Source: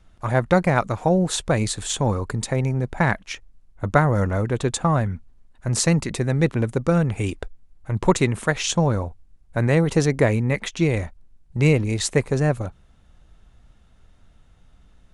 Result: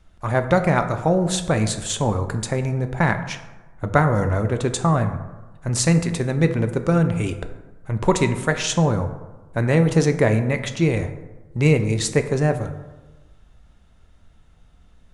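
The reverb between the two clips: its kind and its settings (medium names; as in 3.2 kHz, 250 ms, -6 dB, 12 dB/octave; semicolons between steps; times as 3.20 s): plate-style reverb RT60 1.2 s, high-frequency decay 0.45×, DRR 7.5 dB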